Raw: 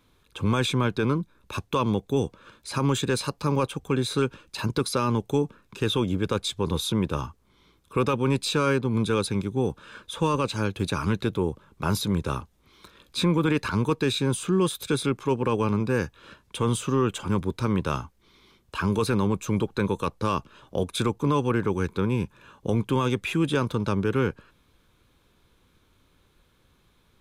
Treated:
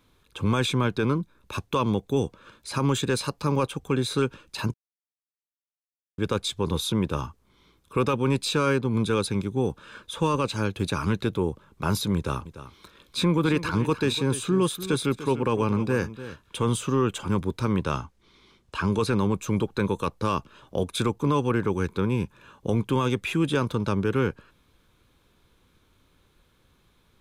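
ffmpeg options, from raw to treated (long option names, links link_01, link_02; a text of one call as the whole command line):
ffmpeg -i in.wav -filter_complex "[0:a]asettb=1/sr,asplit=3[link_01][link_02][link_03];[link_01]atrim=end=12.164[link_04];[link_02]atrim=start=12.16:end=16.69,asetpts=PTS-STARTPTS,afade=type=in:duration=0.004:curve=qsin,afade=type=out:start_time=4.526:duration=0.004:curve=qsin,aecho=1:1:295:0.211,atrim=end_sample=199773[link_05];[link_03]atrim=start=16.686[link_06];[link_04][link_05]acrossfade=duration=0.004:curve1=hsin:curve2=qsin[link_07];[link_07][link_06]acrossfade=duration=0.004:curve1=qsin:curve2=hsin,asettb=1/sr,asplit=3[link_08][link_09][link_10];[link_08]atrim=end=17.844[link_11];[link_09]atrim=start=17.84:end=19.19,asetpts=PTS-STARTPTS,afade=type=in:duration=0.004:curve=qsin,afade=type=out:start_time=1.346:duration=0.004:curve=qsin,lowpass=9400[link_12];[link_10]atrim=start=19.186[link_13];[link_11][link_12]acrossfade=duration=0.004:curve1=hsin:curve2=qsin[link_14];[link_14][link_13]acrossfade=duration=0.004:curve1=qsin:curve2=hsin,asplit=3[link_15][link_16][link_17];[link_15]atrim=end=4.74,asetpts=PTS-STARTPTS,afade=type=out:start_time=4.736:duration=0.004:curve=hsin[link_18];[link_16]atrim=start=4.74:end=6.18,asetpts=PTS-STARTPTS,volume=0[link_19];[link_17]atrim=start=6.18,asetpts=PTS-STARTPTS,afade=type=in:duration=0.004:curve=hsin[link_20];[link_18][link_19][link_20]concat=n=3:v=0:a=1" out.wav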